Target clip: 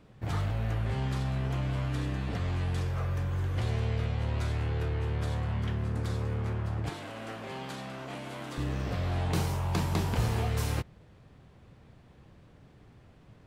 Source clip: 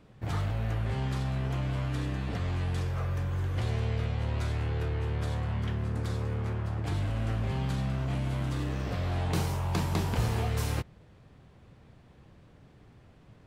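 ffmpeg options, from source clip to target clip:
-filter_complex "[0:a]asettb=1/sr,asplit=3[a][b][c];[a]atrim=end=6.894[d];[b]atrim=start=6.89:end=8.58,asetpts=PTS-STARTPTS,afade=t=in:d=0.004:c=qsin,afade=t=out:st=1.686:d=0.004:c=qsin,highpass=310[e];[c]atrim=start=8.576[f];[d][e]acrossfade=d=0.004:c1=hsin:c2=qsin[g];[g][f]acrossfade=d=0.004:c1=qsin:c2=hsin"

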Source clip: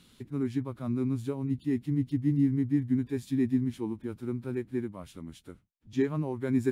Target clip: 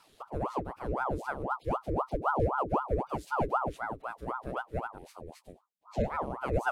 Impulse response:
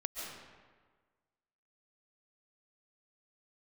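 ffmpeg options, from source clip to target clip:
-filter_complex "[0:a]asettb=1/sr,asplit=3[a][b][c];[a]atrim=end=4.984[d];[b]atrim=start=4.98:end=6.1,asetpts=PTS-STARTPTS,afade=t=in:d=0.004:c=qsin,afade=t=out:st=1.116:d=0.004:c=qsin,asuperstop=centerf=1100:order=4:qfactor=0.64[e];[c]atrim=start=6.096[f];[d][e]acrossfade=d=0.004:c1=hsin:c2=qsin[g];[g][f]acrossfade=d=0.004:c1=qsin:c2=hsin,aeval=exprs='val(0)*sin(2*PI*670*n/s+670*0.75/3.9*sin(2*PI*3.9*n/s))':c=same"

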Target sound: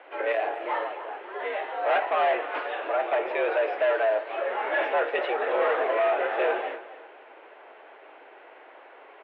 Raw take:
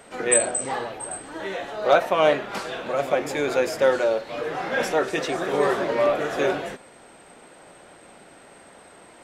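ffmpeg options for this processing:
-af "volume=20dB,asoftclip=hard,volume=-20dB,highpass=f=260:t=q:w=0.5412,highpass=f=260:t=q:w=1.307,lowpass=f=2.9k:t=q:w=0.5176,lowpass=f=2.9k:t=q:w=0.7071,lowpass=f=2.9k:t=q:w=1.932,afreqshift=85,aecho=1:1:264|528|792:0.168|0.052|0.0161"

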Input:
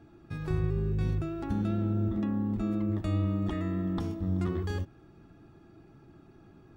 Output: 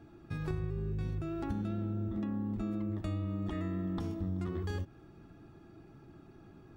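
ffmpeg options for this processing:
-af "acompressor=threshold=-32dB:ratio=6"

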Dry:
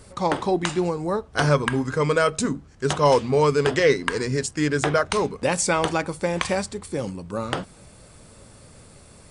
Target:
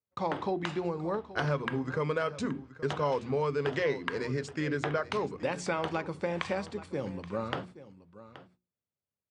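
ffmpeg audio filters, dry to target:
-af "highpass=f=76:w=0.5412,highpass=f=76:w=1.3066,agate=range=-43dB:threshold=-40dB:ratio=16:detection=peak,lowpass=3.6k,bandreject=f=60:t=h:w=6,bandreject=f=120:t=h:w=6,bandreject=f=180:t=h:w=6,bandreject=f=240:t=h:w=6,bandreject=f=300:t=h:w=6,bandreject=f=360:t=h:w=6,acompressor=threshold=-24dB:ratio=2.5,aecho=1:1:826:0.158,volume=-5dB"

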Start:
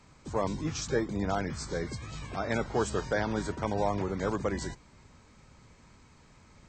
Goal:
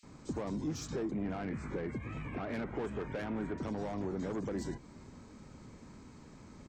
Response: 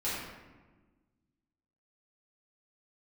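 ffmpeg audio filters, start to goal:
-filter_complex "[0:a]asettb=1/sr,asplit=3[a][b][c];[a]atrim=end=1.114[d];[b]atrim=start=1.11:end=3.58,asetpts=PTS-STARTPTS,afade=t=in:d=0.004:c=qsin,afade=t=out:st=2.466:d=0.004:c=qsin,highshelf=f=3.3k:t=q:w=3:g=-12[e];[c]atrim=start=3.576[f];[d][e]acrossfade=d=0.004:c1=hsin:c2=qsin[g];[g][f]acrossfade=d=0.004:c1=qsin:c2=hsin,acrossover=split=2700[h][i];[h]adelay=30[j];[j][i]amix=inputs=2:normalize=0,asoftclip=type=tanh:threshold=-29.5dB,acompressor=threshold=-41dB:ratio=6,equalizer=f=270:w=0.81:g=10"

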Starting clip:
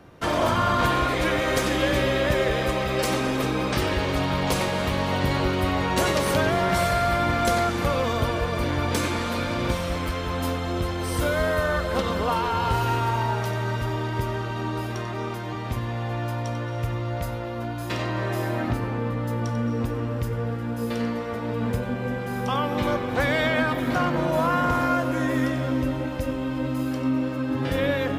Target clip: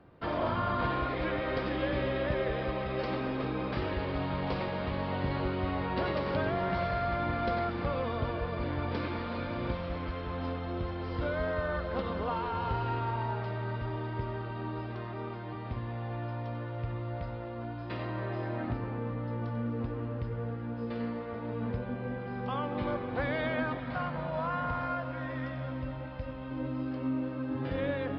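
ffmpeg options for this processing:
-filter_complex "[0:a]highshelf=f=3.2k:g=-11.5,aresample=11025,aresample=44100,asettb=1/sr,asplit=3[a][b][c];[a]atrim=end=23.774[d];[b]atrim=start=23.77:end=26.51,asetpts=PTS-STARTPTS,afade=t=in:d=0.004:c=qsin,afade=t=out:st=2.736:d=0.004:c=qsin,equalizer=f=340:t=o:w=0.69:g=-14.5[e];[c]atrim=start=26.506[f];[d][e]acrossfade=d=0.004:c1=hsin:c2=qsin[g];[g][f]acrossfade=d=0.004:c1=qsin:c2=hsin,volume=-8dB"

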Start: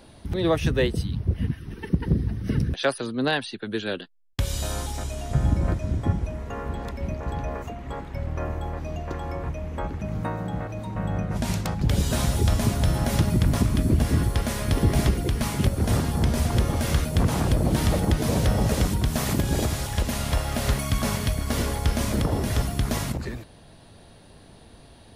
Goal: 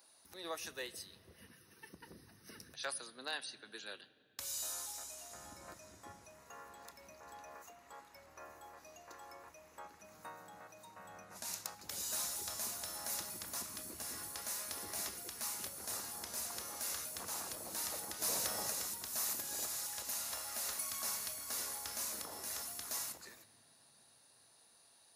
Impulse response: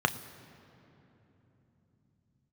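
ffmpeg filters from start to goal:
-filter_complex "[0:a]asplit=2[a][b];[1:a]atrim=start_sample=2205,asetrate=48510,aresample=44100[c];[b][c]afir=irnorm=-1:irlink=0,volume=-13.5dB[d];[a][d]amix=inputs=2:normalize=0,asplit=3[e][f][g];[e]afade=t=out:st=18.21:d=0.02[h];[f]acontrast=28,afade=t=in:st=18.21:d=0.02,afade=t=out:st=18.69:d=0.02[i];[g]afade=t=in:st=18.69:d=0.02[j];[h][i][j]amix=inputs=3:normalize=0,aderivative,volume=-4dB"

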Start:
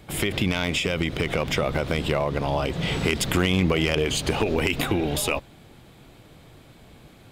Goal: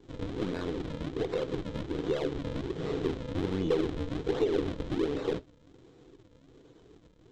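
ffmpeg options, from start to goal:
-filter_complex "[0:a]aresample=16000,acrusher=samples=24:mix=1:aa=0.000001:lfo=1:lforange=38.4:lforate=1.3,aresample=44100,acrossover=split=4800[a][b];[b]acompressor=threshold=-54dB:ratio=4:attack=1:release=60[c];[a][c]amix=inputs=2:normalize=0,asoftclip=type=tanh:threshold=-15dB,aeval=exprs='0.178*(cos(1*acos(clip(val(0)/0.178,-1,1)))-cos(1*PI/2))+0.0178*(cos(4*acos(clip(val(0)/0.178,-1,1)))-cos(4*PI/2))':c=same,superequalizer=6b=3.16:7b=3.98:13b=1.78,flanger=delay=5.3:depth=4.8:regen=-79:speed=1.8:shape=sinusoidal,volume=-7dB"

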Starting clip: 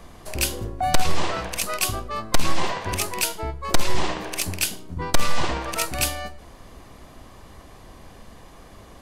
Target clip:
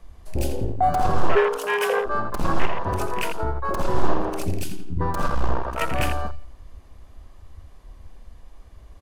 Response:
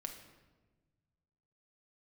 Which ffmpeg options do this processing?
-filter_complex "[0:a]aeval=exprs='0.15*(abs(mod(val(0)/0.15+3,4)-2)-1)':c=same,asettb=1/sr,asplit=3[a][b][c];[a]atrim=end=5.284[d];[b]atrim=start=5.28:end=5.81,asetpts=PTS-STARTPTS,afade=t=in:d=0.004:c=qsin,afade=t=out:st=0.526:d=0.004:c=qsin,tremolo=f=62:d=0.788[e];[c]atrim=start=5.806[f];[d][e]acrossfade=d=0.004:c1=hsin:c2=qsin[g];[g][f]acrossfade=d=0.004:c1=qsin:c2=hsin,asplit=2[h][i];[i]adelay=84,lowpass=f=4.5k:p=1,volume=-6.5dB,asplit=2[j][k];[k]adelay=84,lowpass=f=4.5k:p=1,volume=0.44,asplit=2[l][m];[m]adelay=84,lowpass=f=4.5k:p=1,volume=0.44,asplit=2[n][o];[o]adelay=84,lowpass=f=4.5k:p=1,volume=0.44,asplit=2[p][q];[q]adelay=84,lowpass=f=4.5k:p=1,volume=0.44[r];[h][j][l][n][p][r]amix=inputs=6:normalize=0,asplit=3[s][t][u];[s]afade=t=out:st=1.35:d=0.02[v];[t]afreqshift=410,afade=t=in:st=1.35:d=0.02,afade=t=out:st=2.05:d=0.02[w];[u]afade=t=in:st=2.05:d=0.02[x];[v][w][x]amix=inputs=3:normalize=0,asplit=2[y][z];[1:a]atrim=start_sample=2205[aa];[z][aa]afir=irnorm=-1:irlink=0,volume=-13dB[ab];[y][ab]amix=inputs=2:normalize=0,afwtdn=0.0447,asettb=1/sr,asplit=3[ac][ad][ae];[ac]atrim=end=2.654[af];[ad]atrim=start=2.65:end=3.69,asetpts=PTS-STARTPTS,afade=t=in:d=0.004:c=qsin,afade=t=out:st=1.036:d=0.004:c=qsin,acompressor=threshold=-23dB:ratio=2[ag];[ae]atrim=start=3.686[ah];[af][ag]acrossfade=d=0.004:c1=hsin:c2=qsin[ai];[ai][ah]acrossfade=d=0.004:c1=qsin:c2=hsin,volume=3.5dB"

